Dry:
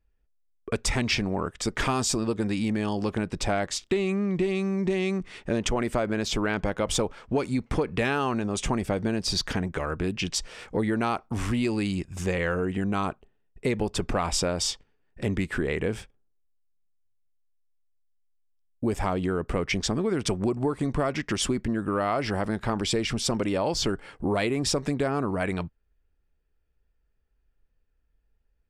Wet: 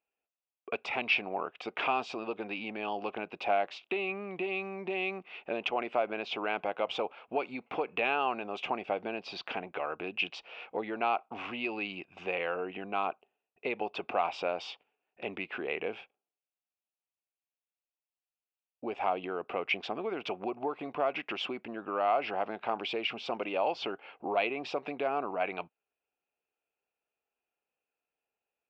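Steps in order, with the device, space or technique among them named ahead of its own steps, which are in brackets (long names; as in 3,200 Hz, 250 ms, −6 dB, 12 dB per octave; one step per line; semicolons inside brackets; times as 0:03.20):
phone earpiece (loudspeaker in its box 460–3,200 Hz, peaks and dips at 740 Hz +8 dB, 1,800 Hz −9 dB, 2,600 Hz +10 dB)
level −4 dB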